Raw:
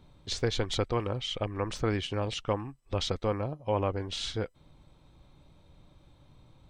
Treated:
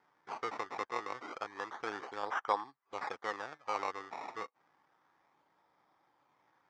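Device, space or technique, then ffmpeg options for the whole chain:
circuit-bent sampling toy: -filter_complex "[0:a]acrusher=samples=19:mix=1:aa=0.000001:lfo=1:lforange=19:lforate=0.3,highpass=570,equalizer=f=580:t=q:w=4:g=-7,equalizer=f=850:t=q:w=4:g=5,equalizer=f=1.2k:t=q:w=4:g=4,equalizer=f=1.8k:t=q:w=4:g=4,equalizer=f=2.8k:t=q:w=4:g=-9,equalizer=f=4.1k:t=q:w=4:g=-9,lowpass=f=5k:w=0.5412,lowpass=f=5k:w=1.3066,asettb=1/sr,asplit=3[a][b][c];[a]atrim=end=2.234[d];[b]atrim=start=2.23:end=2.64,asetpts=PTS-STARTPTS,afade=t=in:d=0.004:c=qsin,afade=t=out:st=0.406:d=0.004:c=qsin,equalizer=f=880:w=0.49:g=7[e];[c]atrim=start=2.636[f];[d][e]acrossfade=d=0.004:c1=hsin:c2=qsin[g];[g][f]acrossfade=d=0.004:c1=qsin:c2=hsin,volume=-4.5dB"

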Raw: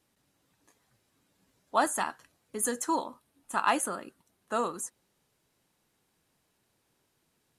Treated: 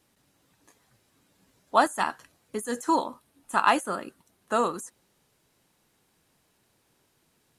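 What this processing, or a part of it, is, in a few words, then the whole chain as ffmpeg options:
de-esser from a sidechain: -filter_complex "[0:a]asplit=2[a][b];[b]highpass=f=5.3k:w=0.5412,highpass=f=5.3k:w=1.3066,apad=whole_len=334281[c];[a][c]sidechaincompress=threshold=-43dB:ratio=5:attack=1.6:release=43,volume=5.5dB"

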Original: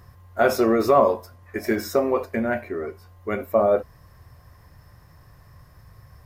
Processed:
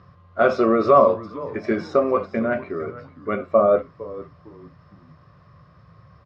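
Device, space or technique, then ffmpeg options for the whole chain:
frequency-shifting delay pedal into a guitar cabinet: -filter_complex "[0:a]asplit=4[a][b][c][d];[b]adelay=456,afreqshift=-120,volume=-16.5dB[e];[c]adelay=912,afreqshift=-240,volume=-26.7dB[f];[d]adelay=1368,afreqshift=-360,volume=-36.8dB[g];[a][e][f][g]amix=inputs=4:normalize=0,highpass=99,equalizer=f=170:t=q:w=4:g=8,equalizer=f=570:t=q:w=4:g=4,equalizer=f=860:t=q:w=4:g=-7,equalizer=f=1.2k:t=q:w=4:g=9,equalizer=f=1.8k:t=q:w=4:g=-5,lowpass=f=4.3k:w=0.5412,lowpass=f=4.3k:w=1.3066"

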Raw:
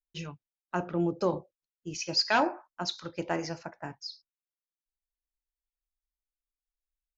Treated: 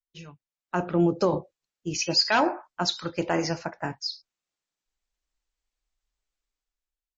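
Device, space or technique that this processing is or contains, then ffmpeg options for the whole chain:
low-bitrate web radio: -af "dynaudnorm=f=130:g=11:m=15dB,alimiter=limit=-8dB:level=0:latency=1:release=32,volume=-5dB" -ar 24000 -c:a libmp3lame -b:a 32k

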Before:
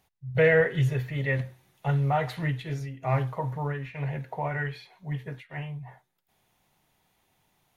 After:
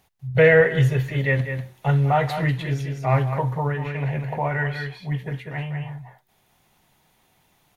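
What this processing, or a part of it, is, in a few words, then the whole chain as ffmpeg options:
ducked delay: -filter_complex "[0:a]asplit=3[a][b][c];[b]adelay=195,volume=-4.5dB[d];[c]apad=whole_len=351207[e];[d][e]sidechaincompress=threshold=-32dB:ratio=8:attack=6.5:release=305[f];[a][f]amix=inputs=2:normalize=0,volume=6dB"

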